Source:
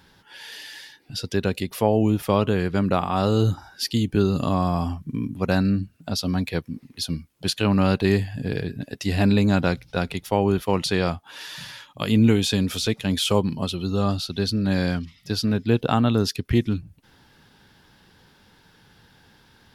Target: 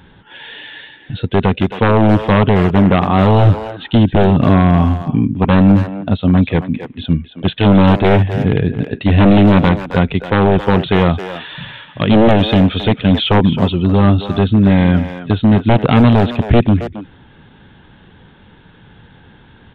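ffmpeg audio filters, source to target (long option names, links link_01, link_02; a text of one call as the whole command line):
ffmpeg -i in.wav -filter_complex "[0:a]lowshelf=frequency=480:gain=7,aresample=8000,aeval=exprs='0.299*(abs(mod(val(0)/0.299+3,4)-2)-1)':channel_layout=same,aresample=44100,asplit=2[link_01][link_02];[link_02]adelay=270,highpass=300,lowpass=3400,asoftclip=type=hard:threshold=-17dB,volume=-9dB[link_03];[link_01][link_03]amix=inputs=2:normalize=0,volume=7.5dB" out.wav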